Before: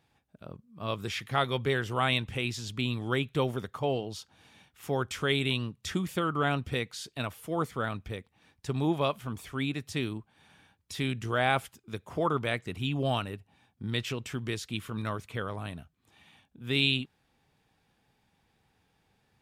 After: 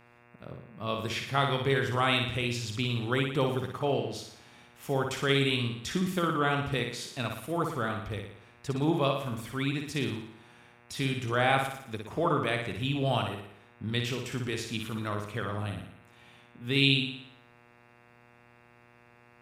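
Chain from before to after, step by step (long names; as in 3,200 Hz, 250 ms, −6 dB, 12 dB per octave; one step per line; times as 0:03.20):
flutter between parallel walls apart 10 metres, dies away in 0.67 s
hum with harmonics 120 Hz, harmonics 23, −59 dBFS −2 dB per octave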